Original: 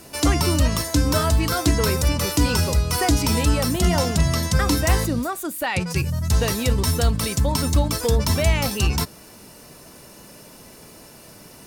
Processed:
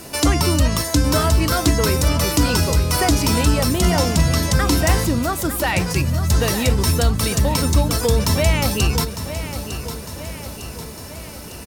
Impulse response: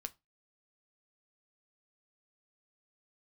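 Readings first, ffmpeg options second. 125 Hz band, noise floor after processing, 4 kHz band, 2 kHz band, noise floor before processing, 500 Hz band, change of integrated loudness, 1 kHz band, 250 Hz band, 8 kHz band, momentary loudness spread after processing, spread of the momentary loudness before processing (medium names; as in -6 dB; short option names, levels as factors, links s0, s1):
+3.0 dB, -34 dBFS, +3.5 dB, +3.0 dB, -45 dBFS, +3.0 dB, +2.5 dB, +3.0 dB, +3.0 dB, +3.5 dB, 14 LU, 5 LU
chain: -filter_complex "[0:a]asplit=2[s0][s1];[s1]acompressor=threshold=0.0355:ratio=6,volume=1.26[s2];[s0][s2]amix=inputs=2:normalize=0,aecho=1:1:904|1808|2712|3616|4520|5424:0.282|0.158|0.0884|0.0495|0.0277|0.0155"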